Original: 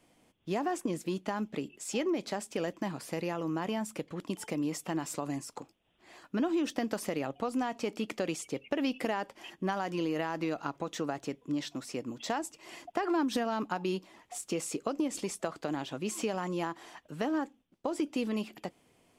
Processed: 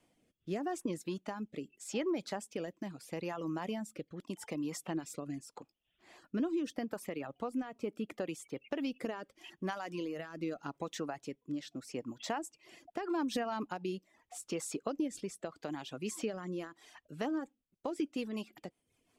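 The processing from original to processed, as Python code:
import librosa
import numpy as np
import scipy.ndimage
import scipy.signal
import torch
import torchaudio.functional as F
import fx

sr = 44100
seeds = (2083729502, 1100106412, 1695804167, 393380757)

y = fx.dynamic_eq(x, sr, hz=5300.0, q=0.73, threshold_db=-57.0, ratio=4.0, max_db=-8, at=(6.84, 8.6), fade=0.02)
y = fx.dereverb_blind(y, sr, rt60_s=0.68)
y = fx.rotary_switch(y, sr, hz=0.8, then_hz=5.5, switch_at_s=16.62)
y = y * librosa.db_to_amplitude(-2.5)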